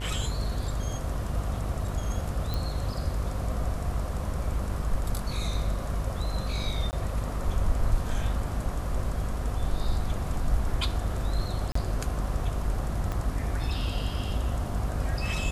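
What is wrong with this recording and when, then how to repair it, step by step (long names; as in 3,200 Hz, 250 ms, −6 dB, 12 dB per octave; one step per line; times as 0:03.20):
mains buzz 50 Hz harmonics 40 −33 dBFS
0:02.54: click
0:06.91–0:06.93: drop-out 19 ms
0:11.72–0:11.75: drop-out 34 ms
0:13.12: click −19 dBFS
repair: click removal
hum removal 50 Hz, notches 40
repair the gap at 0:06.91, 19 ms
repair the gap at 0:11.72, 34 ms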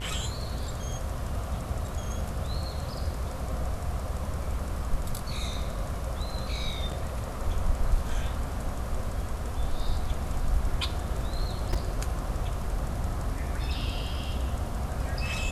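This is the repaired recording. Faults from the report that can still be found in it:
0:13.12: click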